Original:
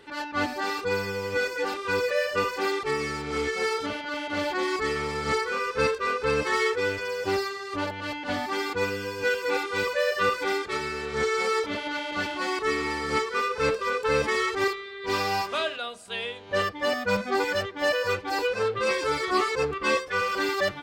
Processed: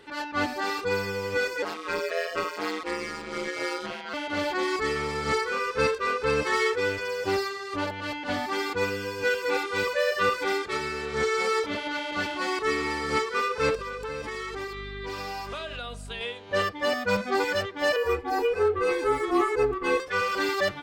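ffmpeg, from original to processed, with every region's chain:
-filter_complex "[0:a]asettb=1/sr,asplit=3[a][b][c];[a]atrim=end=1.624[d];[b]atrim=start=1.62:end=4.14,asetpts=PTS-STARTPTS,afade=t=in:d=0.004:c=qsin,afade=t=out:st=2.516:d=0.004:c=qsin,highpass=f=260:p=1,aeval=exprs='val(0)*sin(2*PI*84*n/s)':c=same[e];[c]atrim=start=4.136[f];[d][e]acrossfade=d=0.004:c1=hsin:c2=qsin[g];[g][f]acrossfade=d=0.004:c1=qsin:c2=hsin,asettb=1/sr,asplit=3[h][i][j];[h]atrim=end=13.754[k];[i]atrim=start=13.75:end=16.21,asetpts=PTS-STARTPTS,afade=t=in:d=0.004:c=qsin,afade=t=out:st=2.456:d=0.004:c=qsin,aeval=exprs='val(0)+0.0112*(sin(2*PI*50*n/s)+sin(2*PI*2*50*n/s)/2+sin(2*PI*3*50*n/s)/3+sin(2*PI*4*50*n/s)/4+sin(2*PI*5*50*n/s)/5)':c=same,acompressor=threshold=-31dB:ratio=6:attack=3.2:release=140:knee=1:detection=peak[l];[j]atrim=start=16.206[m];[k][l]acrossfade=d=0.004:c1=hsin:c2=qsin[n];[n][m]acrossfade=d=0.004:c1=qsin:c2=hsin,asettb=1/sr,asplit=3[o][p][q];[o]atrim=end=17.964[r];[p]atrim=start=17.96:end=20,asetpts=PTS-STARTPTS,afade=t=in:d=0.004:c=qsin,afade=t=out:st=2.036:d=0.004:c=qsin,equalizer=f=4.7k:t=o:w=2.1:g=-10.5,aecho=1:1:2.4:0.61,atrim=end_sample=89964,afreqshift=-22[s];[q]atrim=start=19.996[t];[r][s]acrossfade=d=0.004:c1=hsin:c2=qsin[u];[u][t]acrossfade=d=0.004:c1=qsin:c2=hsin"

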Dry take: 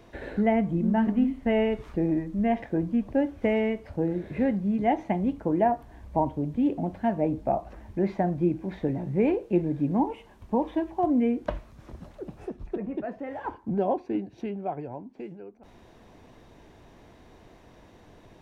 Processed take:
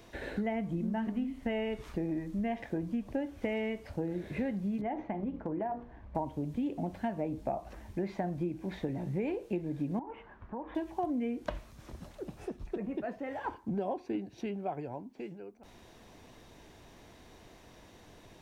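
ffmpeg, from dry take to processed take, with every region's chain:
-filter_complex "[0:a]asettb=1/sr,asplit=3[a][b][c];[a]atrim=end=4.814[d];[b]atrim=start=4.81:end=6.15,asetpts=PTS-STARTPTS,afade=t=in:d=0.004:c=qsin,afade=t=out:st=1.336:d=0.004:c=qsin,lowpass=1.8k,bandreject=f=60:t=h:w=6,bandreject=f=120:t=h:w=6,bandreject=f=180:t=h:w=6,bandreject=f=240:t=h:w=6,bandreject=f=300:t=h:w=6,bandreject=f=360:t=h:w=6,bandreject=f=420:t=h:w=6,bandreject=f=480:t=h:w=6,bandreject=f=540:t=h:w=6,acompressor=threshold=-27dB:ratio=4:attack=3.2:release=140:knee=1:detection=peak[e];[c]atrim=start=6.146[f];[d][e]acrossfade=d=0.004:c1=hsin:c2=qsin[g];[g][f]acrossfade=d=0.004:c1=qsin:c2=hsin,asettb=1/sr,asplit=3[h][i][j];[h]atrim=end=9.994[k];[i]atrim=start=9.99:end=10.75,asetpts=PTS-STARTPTS,afade=t=in:d=0.004:c=qsin,afade=t=out:st=0.756:d=0.004:c=qsin,acompressor=threshold=-38dB:ratio=3:attack=3.2:release=140:knee=1:detection=peak,lowpass=f=1.5k:t=q:w=2.4[l];[j]atrim=start=10.746[m];[k][l]acrossfade=d=0.004:c1=hsin:c2=qsin[n];[n][m]acrossfade=d=0.004:c1=qsin:c2=hsin,acompressor=threshold=-27dB:ratio=6,highshelf=f=2.7k:g=10,volume=-3.5dB"

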